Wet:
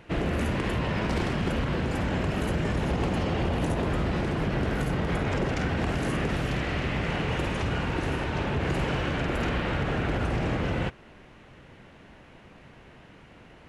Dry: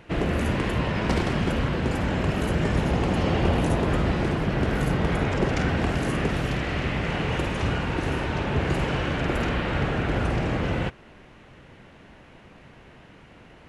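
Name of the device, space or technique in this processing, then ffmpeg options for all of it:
limiter into clipper: -af "alimiter=limit=0.15:level=0:latency=1:release=50,asoftclip=type=hard:threshold=0.119,volume=0.841"

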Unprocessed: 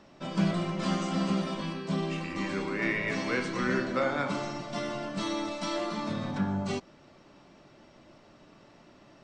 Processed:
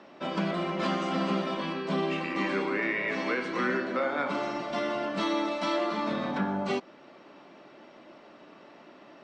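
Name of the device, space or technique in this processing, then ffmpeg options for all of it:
DJ mixer with the lows and highs turned down: -filter_complex "[0:a]acrossover=split=210 4000:gain=0.0631 1 0.2[s0][s1][s2];[s0][s1][s2]amix=inputs=3:normalize=0,alimiter=level_in=1.06:limit=0.0631:level=0:latency=1:release=420,volume=0.944,volume=2"

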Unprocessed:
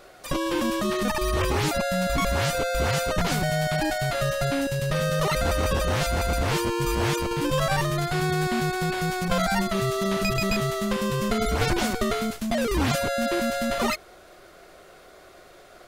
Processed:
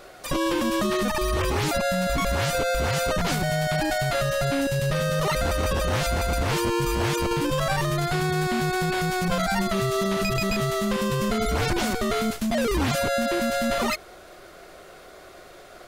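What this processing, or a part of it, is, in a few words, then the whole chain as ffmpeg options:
soft clipper into limiter: -af "asoftclip=type=tanh:threshold=0.2,alimiter=limit=0.0944:level=0:latency=1:release=58,volume=1.5"

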